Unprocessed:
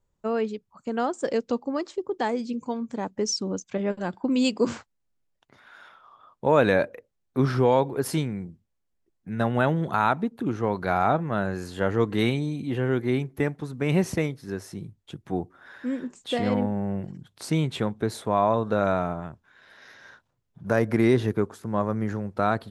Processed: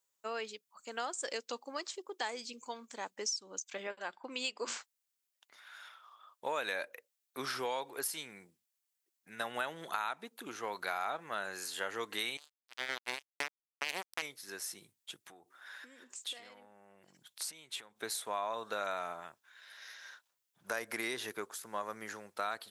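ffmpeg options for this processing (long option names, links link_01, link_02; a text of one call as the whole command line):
ffmpeg -i in.wav -filter_complex "[0:a]asettb=1/sr,asplit=3[link_01][link_02][link_03];[link_01]atrim=end=3.874[link_04];[link_02]atrim=start=3.87:end=4.68,asetpts=PTS-STARTPTS,afade=type=in:duration=0.004:curve=qsin,afade=type=out:start_time=0.806:duration=0.004:curve=qsin,bass=frequency=250:gain=-8,treble=frequency=4000:gain=-11[link_05];[link_03]atrim=start=4.676[link_06];[link_04][link_05]acrossfade=duration=0.004:curve1=hsin:curve2=qsin[link_07];[link_07][link_06]acrossfade=duration=0.004:curve1=qsin:curve2=hsin,asettb=1/sr,asplit=3[link_08][link_09][link_10];[link_08]atrim=end=12.374[link_11];[link_09]atrim=start=12.37:end=14.22,asetpts=PTS-STARTPTS,afade=type=in:duration=0.004:curve=qsin,afade=type=out:start_time=1.846:duration=0.004:curve=qsin,acrusher=bits=2:mix=0:aa=0.5[link_12];[link_10]atrim=start=14.216[link_13];[link_11][link_12]acrossfade=duration=0.004:curve1=hsin:curve2=qsin[link_14];[link_14][link_13]acrossfade=duration=0.004:curve1=qsin:curve2=hsin,asettb=1/sr,asplit=3[link_15][link_16][link_17];[link_15]atrim=end=15.214[link_18];[link_16]atrim=start=15.21:end=18,asetpts=PTS-STARTPTS,afade=type=in:duration=0.004:curve=qsin,afade=type=out:start_time=2.786:duration=0.004:curve=qsin,acompressor=threshold=-37dB:ratio=16:attack=3.2:release=140:knee=1:detection=peak[link_19];[link_17]atrim=start=17.996[link_20];[link_18][link_19]acrossfade=duration=0.004:curve1=hsin:curve2=qsin[link_21];[link_21][link_20]acrossfade=duration=0.004:curve1=qsin:curve2=hsin,aderivative,acompressor=threshold=-42dB:ratio=5,bass=frequency=250:gain=-7,treble=frequency=4000:gain=-4,volume=10dB" out.wav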